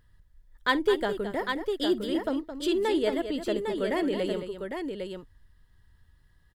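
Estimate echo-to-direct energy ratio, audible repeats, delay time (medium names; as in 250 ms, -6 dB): -4.5 dB, 3, 51 ms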